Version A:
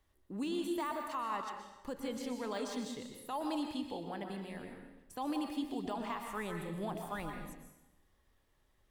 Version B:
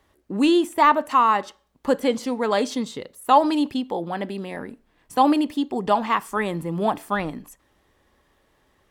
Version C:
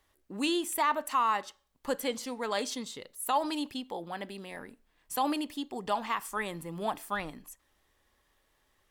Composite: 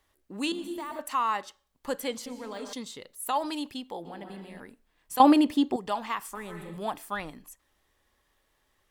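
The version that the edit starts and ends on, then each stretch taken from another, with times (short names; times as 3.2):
C
0.52–0.99 from A
2.26–2.73 from A
4.05–4.6 from A
5.2–5.76 from B
6.35–6.77 from A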